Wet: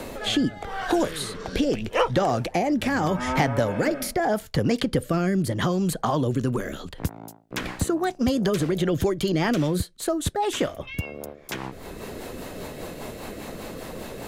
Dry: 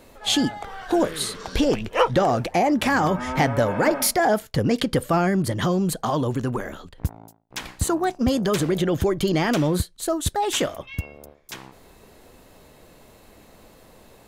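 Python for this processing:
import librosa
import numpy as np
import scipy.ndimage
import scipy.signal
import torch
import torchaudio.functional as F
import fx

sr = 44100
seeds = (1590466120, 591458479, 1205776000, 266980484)

y = fx.rotary_switch(x, sr, hz=0.8, then_hz=5.0, switch_at_s=7.25)
y = fx.band_squash(y, sr, depth_pct=70)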